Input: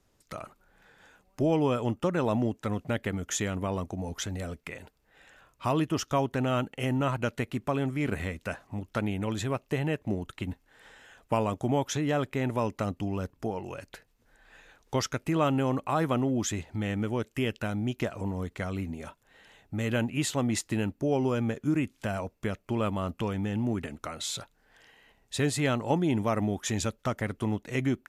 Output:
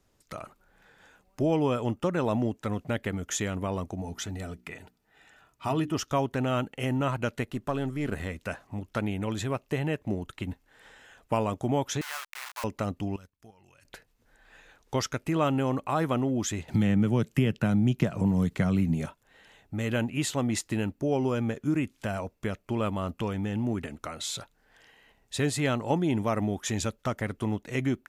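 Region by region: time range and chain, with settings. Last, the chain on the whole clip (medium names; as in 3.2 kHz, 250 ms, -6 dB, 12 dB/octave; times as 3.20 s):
4.02–5.95 s: de-esser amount 35% + hum notches 60/120/180/240/300/360 Hz + comb of notches 540 Hz
7.43–8.30 s: partial rectifier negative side -3 dB + peaking EQ 2.3 kHz -8 dB 0.21 oct
12.01–12.64 s: send-on-delta sampling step -28 dBFS + inverse Chebyshev high-pass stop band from 230 Hz, stop band 70 dB
13.16–13.85 s: amplifier tone stack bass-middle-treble 5-5-5 + level held to a coarse grid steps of 10 dB
16.68–19.06 s: peaking EQ 160 Hz +14 dB 0.99 oct + three bands compressed up and down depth 70%
whole clip: none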